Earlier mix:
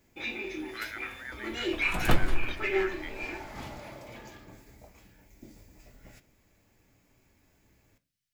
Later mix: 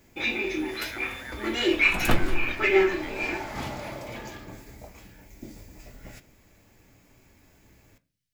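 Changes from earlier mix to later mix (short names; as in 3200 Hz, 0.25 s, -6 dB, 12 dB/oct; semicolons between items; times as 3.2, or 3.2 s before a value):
first sound +8.0 dB; second sound: send on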